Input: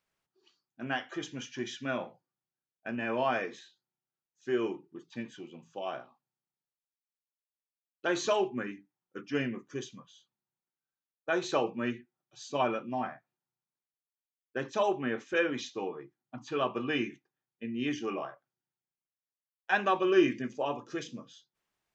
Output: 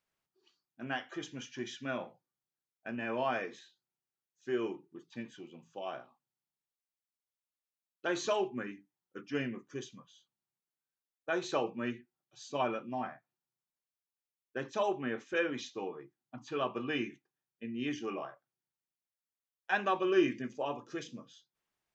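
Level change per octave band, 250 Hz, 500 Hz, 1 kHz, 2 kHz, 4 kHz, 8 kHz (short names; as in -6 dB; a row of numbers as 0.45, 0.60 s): -3.5 dB, -3.5 dB, -3.5 dB, -3.5 dB, -3.5 dB, n/a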